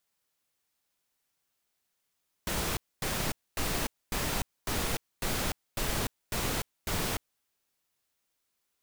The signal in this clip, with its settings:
noise bursts pink, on 0.30 s, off 0.25 s, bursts 9, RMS −31 dBFS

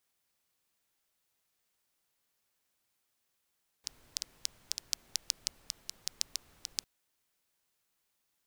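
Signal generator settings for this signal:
rain-like ticks over hiss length 3.00 s, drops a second 5.8, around 5,200 Hz, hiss −21 dB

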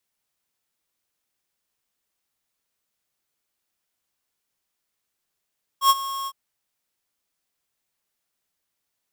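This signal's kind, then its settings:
note with an ADSR envelope square 1,090 Hz, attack 89 ms, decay 38 ms, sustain −16 dB, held 0.46 s, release 51 ms −13.5 dBFS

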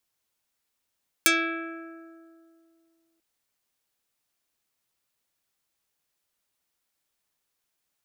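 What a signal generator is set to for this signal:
Karplus-Strong string E4, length 1.94 s, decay 2.47 s, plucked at 0.34, dark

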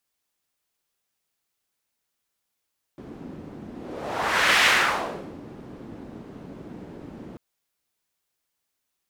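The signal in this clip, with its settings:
pass-by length 4.39 s, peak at 0:01.65, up 0.99 s, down 0.80 s, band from 260 Hz, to 2,100 Hz, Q 1.4, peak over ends 22.5 dB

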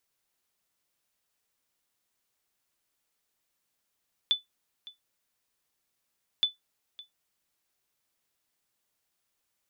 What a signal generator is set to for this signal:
ping with an echo 3,490 Hz, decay 0.15 s, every 2.12 s, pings 2, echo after 0.56 s, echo −20.5 dB −16 dBFS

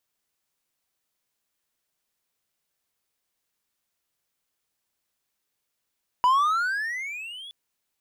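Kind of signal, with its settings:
pitch glide with a swell triangle, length 1.27 s, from 973 Hz, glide +22 semitones, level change −23 dB, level −13.5 dB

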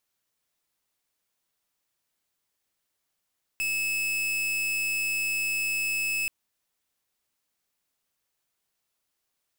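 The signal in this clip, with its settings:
pulse wave 2,600 Hz, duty 42% −28 dBFS 2.68 s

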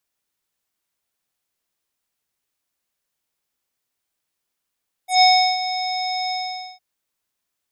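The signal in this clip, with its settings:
subtractive voice square F#5 24 dB per octave, low-pass 5,300 Hz, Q 4.9, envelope 1.5 octaves, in 0.08 s, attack 133 ms, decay 0.36 s, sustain −12.5 dB, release 0.48 s, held 1.23 s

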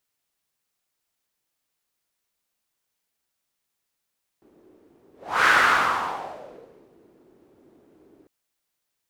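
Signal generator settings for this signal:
pass-by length 3.85 s, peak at 0:01.04, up 0.36 s, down 1.64 s, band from 350 Hz, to 1,500 Hz, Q 3.5, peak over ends 39.5 dB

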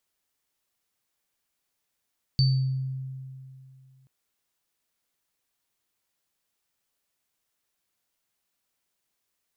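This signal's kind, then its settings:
inharmonic partials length 1.68 s, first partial 132 Hz, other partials 4,560 Hz, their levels −6 dB, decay 2.53 s, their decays 0.55 s, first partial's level −17 dB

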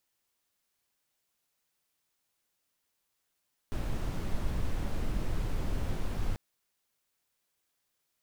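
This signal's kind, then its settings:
noise brown, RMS −30 dBFS 2.64 s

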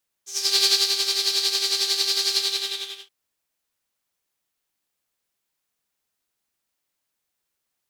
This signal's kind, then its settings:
subtractive patch with tremolo G4, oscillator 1 triangle, oscillator 2 saw, interval +12 semitones, oscillator 2 level −13 dB, sub −25.5 dB, noise −6 dB, filter bandpass, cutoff 3,300 Hz, Q 5.3, filter envelope 1 octave, attack 366 ms, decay 0.29 s, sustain −5 dB, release 0.74 s, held 2.09 s, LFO 11 Hz, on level 8 dB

